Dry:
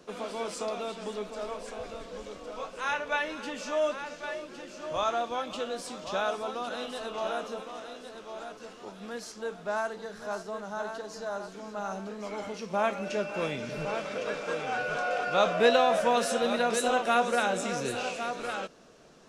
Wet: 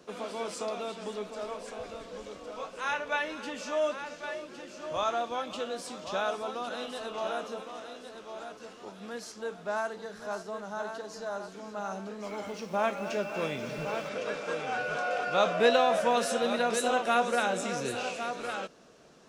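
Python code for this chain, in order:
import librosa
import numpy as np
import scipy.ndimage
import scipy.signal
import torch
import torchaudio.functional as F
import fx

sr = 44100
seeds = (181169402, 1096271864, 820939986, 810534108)

y = fx.highpass(x, sr, hz=49.0, slope=6)
y = fx.echo_crushed(y, sr, ms=245, feedback_pct=55, bits=8, wet_db=-13.0, at=(11.99, 14.09))
y = F.gain(torch.from_numpy(y), -1.0).numpy()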